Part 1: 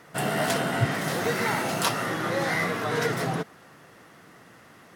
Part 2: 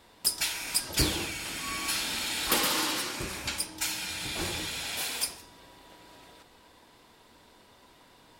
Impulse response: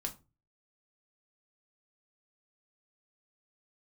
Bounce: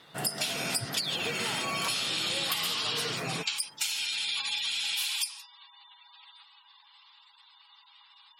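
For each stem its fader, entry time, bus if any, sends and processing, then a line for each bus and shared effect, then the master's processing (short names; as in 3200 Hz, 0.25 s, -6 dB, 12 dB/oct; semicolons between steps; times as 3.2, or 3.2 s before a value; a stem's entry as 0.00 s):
-7.5 dB, 0.00 s, no send, dry
+2.0 dB, 0.00 s, no send, spectral gate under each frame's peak -15 dB strong; rippled Chebyshev high-pass 800 Hz, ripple 9 dB; high shelf 2100 Hz +11.5 dB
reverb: off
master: compressor 12:1, threshold -27 dBFS, peak gain reduction 12 dB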